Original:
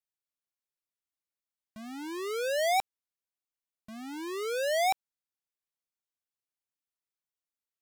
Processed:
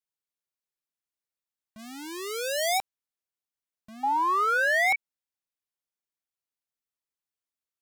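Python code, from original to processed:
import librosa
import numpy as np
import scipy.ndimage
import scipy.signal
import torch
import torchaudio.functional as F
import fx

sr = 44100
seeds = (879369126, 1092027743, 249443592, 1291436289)

y = fx.high_shelf(x, sr, hz=2700.0, db=10.0, at=(1.78, 2.77), fade=0.02)
y = fx.spec_paint(y, sr, seeds[0], shape='rise', start_s=4.03, length_s=0.93, low_hz=800.0, high_hz=2300.0, level_db=-23.0)
y = y * librosa.db_to_amplitude(-1.5)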